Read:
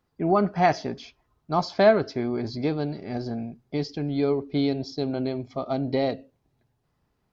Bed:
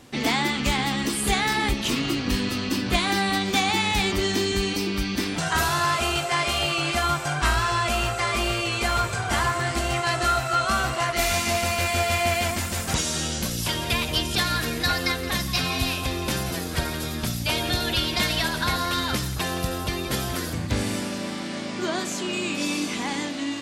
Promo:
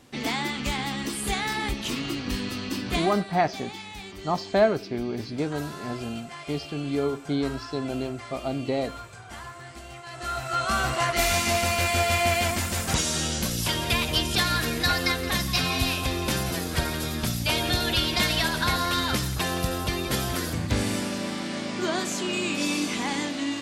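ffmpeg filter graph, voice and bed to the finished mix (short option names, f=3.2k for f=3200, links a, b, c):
-filter_complex "[0:a]adelay=2750,volume=-2.5dB[a];[1:a]volume=12dB,afade=t=out:st=2.96:d=0.28:silence=0.251189,afade=t=in:st=10.1:d=0.83:silence=0.141254[b];[a][b]amix=inputs=2:normalize=0"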